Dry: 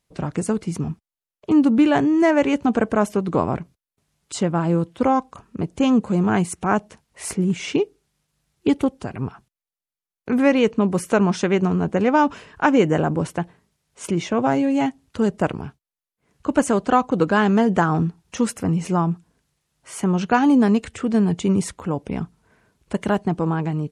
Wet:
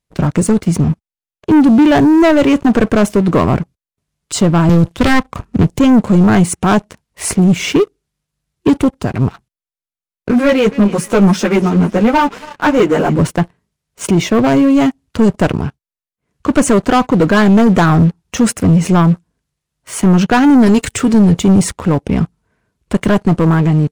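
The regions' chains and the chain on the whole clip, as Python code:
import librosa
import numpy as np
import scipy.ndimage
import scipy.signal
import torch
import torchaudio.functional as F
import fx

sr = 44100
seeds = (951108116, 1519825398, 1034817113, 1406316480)

y = fx.chain(x, sr, fx.self_delay(depth_ms=0.53),
    fx.low_shelf(hz=130.0, db=9.0),
    fx.band_squash(depth_pct=40), at=(4.69, 5.79))
y = fx.chain(y, sr, fx.highpass(hz=130.0, slope=24),
    fx.echo_thinned(ms=281, feedback_pct=63, hz=930.0, wet_db=-17.0),
    fx.ensemble(), at=(10.31, 13.19))
y = fx.chain(y, sr, fx.high_shelf(hz=4800.0, db=11.0),
    fx.comb(ms=7.2, depth=0.34), at=(20.66, 21.14))
y = fx.leveller(y, sr, passes=3)
y = fx.low_shelf(y, sr, hz=160.0, db=5.5)
y = fx.notch(y, sr, hz=820.0, q=19.0)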